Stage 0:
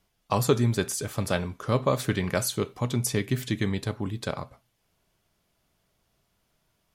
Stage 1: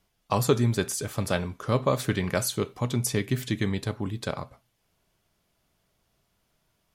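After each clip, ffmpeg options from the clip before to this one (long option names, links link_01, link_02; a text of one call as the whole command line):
ffmpeg -i in.wav -af anull out.wav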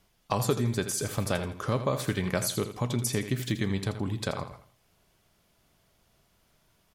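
ffmpeg -i in.wav -af "acompressor=threshold=-35dB:ratio=2,aecho=1:1:82|164|246|328:0.282|0.0958|0.0326|0.0111,volume=4.5dB" out.wav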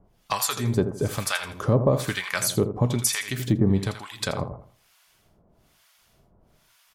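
ffmpeg -i in.wav -filter_complex "[0:a]asplit=2[link_01][link_02];[link_02]asoftclip=type=tanh:threshold=-22dB,volume=-6.5dB[link_03];[link_01][link_03]amix=inputs=2:normalize=0,acrossover=split=940[link_04][link_05];[link_04]aeval=exprs='val(0)*(1-1/2+1/2*cos(2*PI*1.1*n/s))':channel_layout=same[link_06];[link_05]aeval=exprs='val(0)*(1-1/2-1/2*cos(2*PI*1.1*n/s))':channel_layout=same[link_07];[link_06][link_07]amix=inputs=2:normalize=0,volume=7dB" out.wav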